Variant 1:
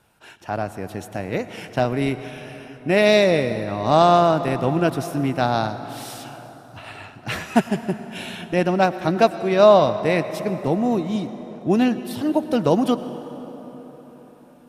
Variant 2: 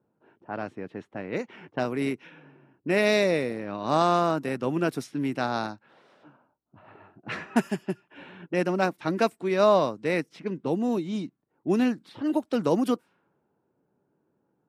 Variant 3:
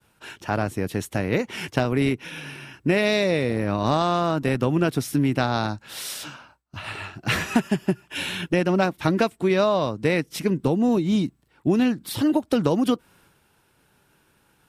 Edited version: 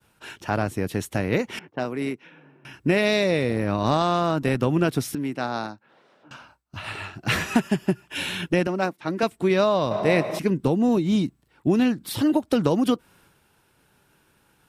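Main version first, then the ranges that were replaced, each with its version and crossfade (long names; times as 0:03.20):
3
0:01.59–0:02.65: punch in from 2
0:05.15–0:06.31: punch in from 2
0:08.67–0:09.23: punch in from 2
0:09.91–0:10.39: punch in from 1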